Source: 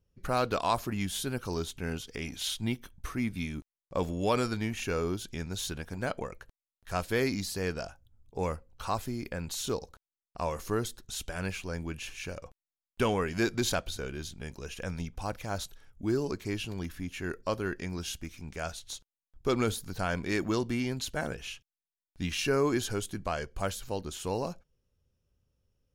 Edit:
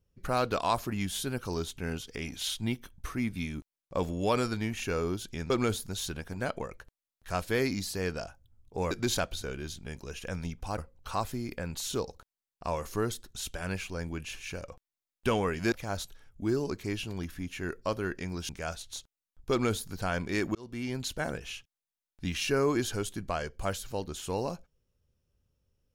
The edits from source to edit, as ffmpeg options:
-filter_complex "[0:a]asplit=8[a][b][c][d][e][f][g][h];[a]atrim=end=5.502[i];[b]atrim=start=19.478:end=19.872[j];[c]atrim=start=5.498:end=8.522[k];[d]atrim=start=13.458:end=15.332[l];[e]atrim=start=8.518:end=13.462[m];[f]atrim=start=15.328:end=18.102[n];[g]atrim=start=18.458:end=20.52,asetpts=PTS-STARTPTS,afade=t=out:st=2.058:d=0.004:c=hsin[o];[h]atrim=start=20.52,asetpts=PTS-STARTPTS,afade=t=in:d=0.45[p];[i][j]acrossfade=d=0.004:c1=hsin:c2=hsin[q];[q][k]acrossfade=d=0.004:c1=hsin:c2=hsin[r];[r][l]acrossfade=d=0.004:c1=hsin:c2=hsin[s];[s][m]acrossfade=d=0.004:c1=hsin:c2=hsin[t];[t][n]acrossfade=d=0.004:c1=hsin:c2=hsin[u];[o][p]concat=n=2:v=0:a=1[v];[u][v]acrossfade=d=0.004:c1=hsin:c2=hsin"

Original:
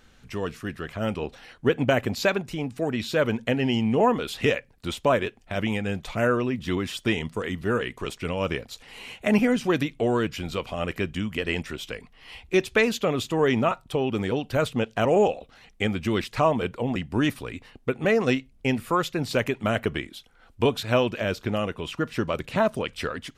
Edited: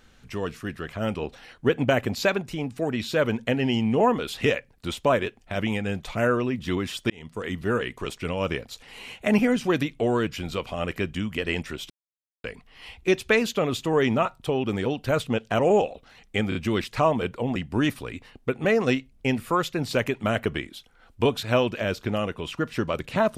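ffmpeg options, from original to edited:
-filter_complex "[0:a]asplit=5[a][b][c][d][e];[a]atrim=end=7.1,asetpts=PTS-STARTPTS,afade=t=out:st=7.096:d=0.004:c=hsin[f];[b]atrim=start=7.1:end=11.9,asetpts=PTS-STARTPTS,afade=t=in:d=0.42,afade=t=out:st=4.796:d=0.004:c=hsin,apad=pad_dur=0.54[g];[c]atrim=start=11.9:end=15.982,asetpts=PTS-STARTPTS,afade=t=in:d=0.004:c=hsin[h];[d]atrim=start=15.948:end=15.982[i];[e]atrim=start=15.948[j];[f][g][h]concat=n=3:v=0:a=1[k];[k][i]acrossfade=d=0.004:c1=hsin:c2=hsin[l];[l][j]acrossfade=d=0.004:c1=hsin:c2=hsin"

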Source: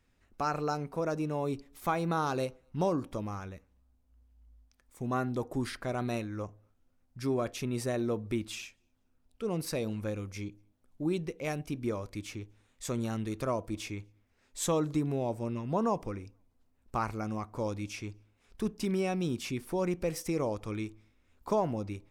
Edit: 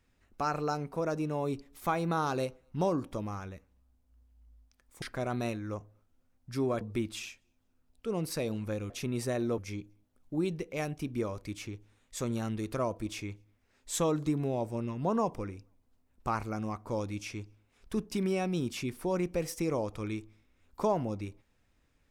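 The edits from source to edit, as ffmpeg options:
-filter_complex "[0:a]asplit=5[a][b][c][d][e];[a]atrim=end=5.022[f];[b]atrim=start=5.698:end=7.492[g];[c]atrim=start=8.168:end=10.262[h];[d]atrim=start=7.488:end=8.172[i];[e]atrim=start=10.258[j];[f][g]acrossfade=d=0.004:c1=hsin:c2=hsin[k];[k][h]acrossfade=d=0.004:c1=hsin:c2=hsin[l];[l][i]acrossfade=d=0.004:c1=hsin:c2=hsin[m];[m][j]acrossfade=d=0.004:c1=hsin:c2=hsin"

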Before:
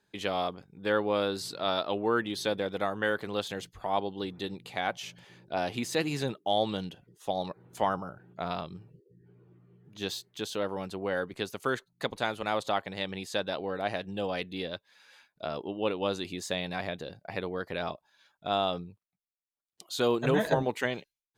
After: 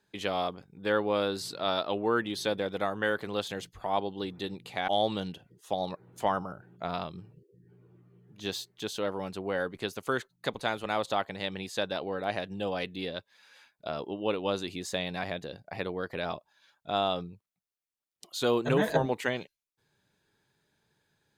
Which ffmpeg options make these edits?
-filter_complex "[0:a]asplit=2[a][b];[a]atrim=end=4.882[c];[b]atrim=start=6.448[d];[c][d]acrossfade=d=0.004:c1=hsin:c2=hsin"

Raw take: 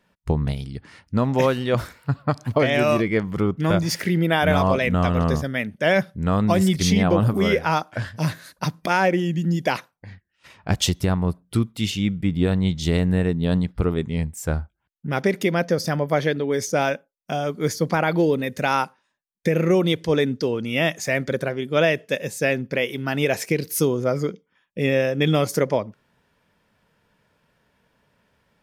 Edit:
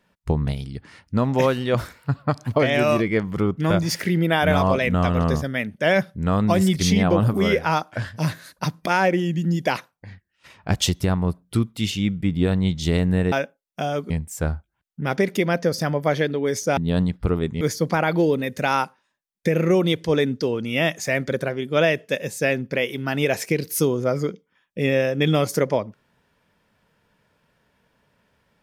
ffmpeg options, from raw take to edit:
-filter_complex "[0:a]asplit=5[a][b][c][d][e];[a]atrim=end=13.322[f];[b]atrim=start=16.828:end=17.612[g];[c]atrim=start=14.158:end=16.832[h];[d]atrim=start=13.318:end=14.162[i];[e]atrim=start=17.608[j];[f][g]acrossfade=d=0.004:c1=hsin:c2=hsin[k];[k][h]acrossfade=d=0.004:c1=hsin:c2=hsin[l];[l][i]acrossfade=d=0.004:c1=hsin:c2=hsin[m];[m][j]acrossfade=d=0.004:c1=hsin:c2=hsin"

